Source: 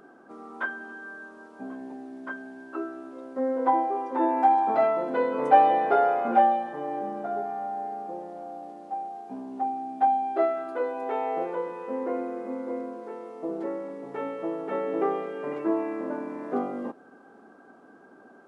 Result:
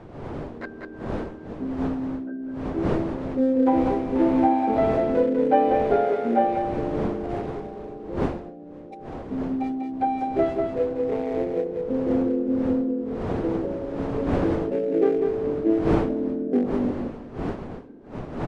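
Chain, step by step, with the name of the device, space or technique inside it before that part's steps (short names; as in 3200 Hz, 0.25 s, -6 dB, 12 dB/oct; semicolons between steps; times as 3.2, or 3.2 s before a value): Wiener smoothing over 41 samples; graphic EQ 125/250/500/1000 Hz +7/+7/+6/-8 dB; feedback echo 0.195 s, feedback 25%, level -5 dB; smartphone video outdoors (wind noise 460 Hz -33 dBFS; AGC gain up to 5.5 dB; gain -4.5 dB; AAC 96 kbps 24000 Hz)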